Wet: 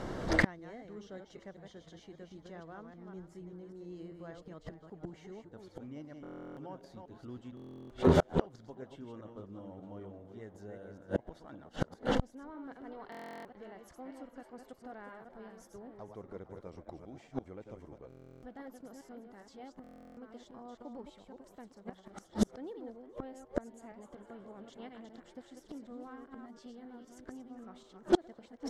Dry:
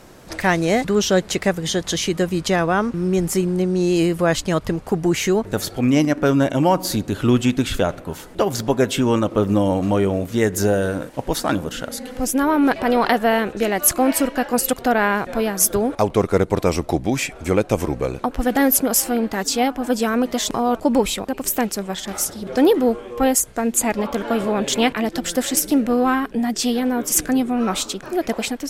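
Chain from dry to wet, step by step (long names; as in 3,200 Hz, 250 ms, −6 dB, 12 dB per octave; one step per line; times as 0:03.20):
delay that plays each chunk backwards 196 ms, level −5.5 dB
notch filter 2,500 Hz, Q 5.9
echo with shifted repeats 456 ms, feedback 47%, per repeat +130 Hz, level −16 dB
gate with flip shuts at −15 dBFS, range −36 dB
head-to-tape spacing loss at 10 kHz 20 dB
buffer that repeats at 0:06.22/0:07.55/0:13.10/0:18.08/0:19.82, samples 1,024, times 14
saturating transformer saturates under 290 Hz
level +6.5 dB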